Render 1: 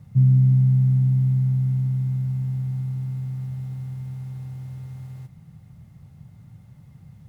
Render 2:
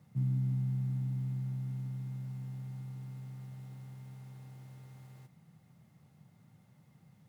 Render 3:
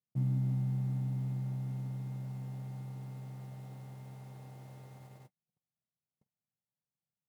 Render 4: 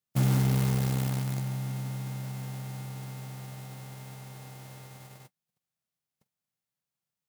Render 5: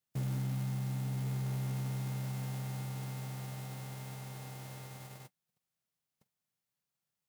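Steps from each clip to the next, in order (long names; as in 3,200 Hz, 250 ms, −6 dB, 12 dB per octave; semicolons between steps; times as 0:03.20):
high-pass filter 220 Hz 12 dB per octave; level −6.5 dB
noise gate −53 dBFS, range −41 dB; drawn EQ curve 160 Hz 0 dB, 630 Hz +10 dB, 1,400 Hz +2 dB
spectral envelope flattened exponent 0.6; in parallel at −8.5 dB: bit reduction 5 bits; on the sum: level +4 dB
downward compressor, threshold −28 dBFS, peak gain reduction 7.5 dB; soft clipping −30 dBFS, distortion −13 dB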